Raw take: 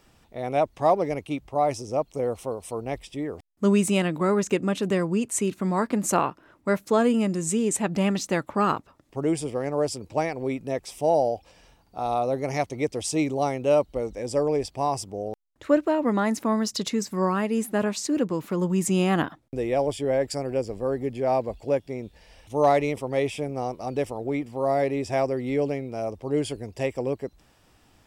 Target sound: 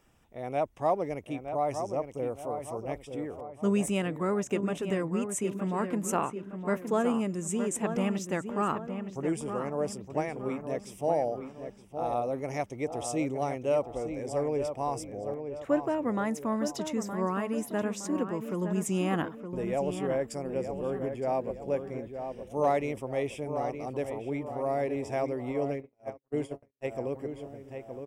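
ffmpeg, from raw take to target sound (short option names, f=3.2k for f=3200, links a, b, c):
-filter_complex "[0:a]asplit=2[a][b];[b]adelay=916,lowpass=f=2.2k:p=1,volume=-7.5dB,asplit=2[c][d];[d]adelay=916,lowpass=f=2.2k:p=1,volume=0.46,asplit=2[e][f];[f]adelay=916,lowpass=f=2.2k:p=1,volume=0.46,asplit=2[g][h];[h]adelay=916,lowpass=f=2.2k:p=1,volume=0.46,asplit=2[i][j];[j]adelay=916,lowpass=f=2.2k:p=1,volume=0.46[k];[a][c][e][g][i][k]amix=inputs=6:normalize=0,asplit=3[l][m][n];[l]afade=t=out:st=25.51:d=0.02[o];[m]agate=range=-56dB:threshold=-25dB:ratio=16:detection=peak,afade=t=in:st=25.51:d=0.02,afade=t=out:st=26.9:d=0.02[p];[n]afade=t=in:st=26.9:d=0.02[q];[o][p][q]amix=inputs=3:normalize=0,equalizer=f=4.3k:w=3.9:g=-13,volume=-6.5dB"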